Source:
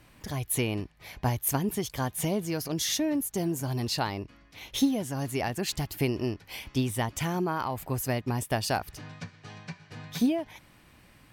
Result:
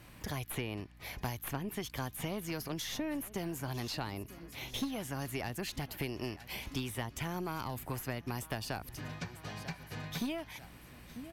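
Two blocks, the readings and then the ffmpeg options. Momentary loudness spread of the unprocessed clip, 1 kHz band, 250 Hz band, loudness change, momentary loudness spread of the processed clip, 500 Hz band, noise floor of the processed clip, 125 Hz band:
16 LU, -8.5 dB, -10.0 dB, -9.5 dB, 6 LU, -9.5 dB, -55 dBFS, -8.5 dB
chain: -filter_complex "[0:a]equalizer=f=12k:w=3.4:g=5.5,aecho=1:1:943|1886|2829:0.0668|0.0341|0.0174,aeval=exprs='0.211*(cos(1*acos(clip(val(0)/0.211,-1,1)))-cos(1*PI/2))+0.0376*(cos(2*acos(clip(val(0)/0.211,-1,1)))-cos(2*PI/2))+0.0299*(cos(4*acos(clip(val(0)/0.211,-1,1)))-cos(4*PI/2))+0.00266*(cos(6*acos(clip(val(0)/0.211,-1,1)))-cos(6*PI/2))':c=same,acrossover=split=410|1000|3400[a][b][c][d];[a]acompressor=threshold=-41dB:ratio=4[e];[b]acompressor=threshold=-49dB:ratio=4[f];[c]acompressor=threshold=-45dB:ratio=4[g];[d]acompressor=threshold=-49dB:ratio=4[h];[e][f][g][h]amix=inputs=4:normalize=0,aeval=exprs='val(0)+0.00112*(sin(2*PI*60*n/s)+sin(2*PI*2*60*n/s)/2+sin(2*PI*3*60*n/s)/3+sin(2*PI*4*60*n/s)/4+sin(2*PI*5*60*n/s)/5)':c=same,volume=1.5dB"

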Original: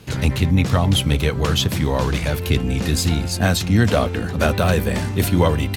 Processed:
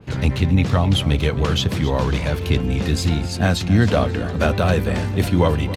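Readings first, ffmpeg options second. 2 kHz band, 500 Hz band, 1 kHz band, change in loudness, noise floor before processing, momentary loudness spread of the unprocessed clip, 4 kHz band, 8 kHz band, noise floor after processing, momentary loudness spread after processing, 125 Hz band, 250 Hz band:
-1.5 dB, 0.0 dB, -0.5 dB, -0.5 dB, -26 dBFS, 4 LU, -2.0 dB, -6.0 dB, -26 dBFS, 4 LU, 0.0 dB, 0.0 dB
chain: -filter_complex "[0:a]aemphasis=mode=reproduction:type=75kf,asplit=2[a][b];[b]aecho=0:1:268|536|804|1072:0.178|0.0711|0.0285|0.0114[c];[a][c]amix=inputs=2:normalize=0,adynamicequalizer=threshold=0.0112:dfrequency=2700:dqfactor=0.7:tfrequency=2700:tqfactor=0.7:attack=5:release=100:ratio=0.375:range=2.5:mode=boostabove:tftype=highshelf"

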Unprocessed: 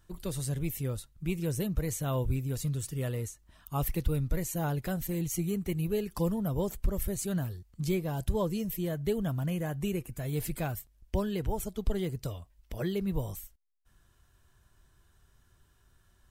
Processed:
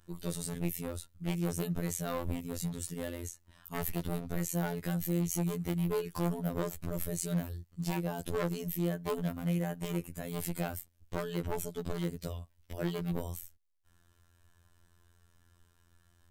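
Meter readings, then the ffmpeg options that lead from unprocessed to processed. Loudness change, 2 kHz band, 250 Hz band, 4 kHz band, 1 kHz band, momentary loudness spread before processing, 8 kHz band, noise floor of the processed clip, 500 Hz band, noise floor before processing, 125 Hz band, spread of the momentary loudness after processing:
-2.5 dB, 0.0 dB, -2.0 dB, -1.0 dB, -1.0 dB, 6 LU, -1.0 dB, -68 dBFS, -3.0 dB, -66 dBFS, -4.0 dB, 9 LU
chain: -af "aeval=exprs='0.0473*(abs(mod(val(0)/0.0473+3,4)-2)-1)':c=same,afftfilt=real='hypot(re,im)*cos(PI*b)':imag='0':win_size=2048:overlap=0.75,volume=2.5dB"

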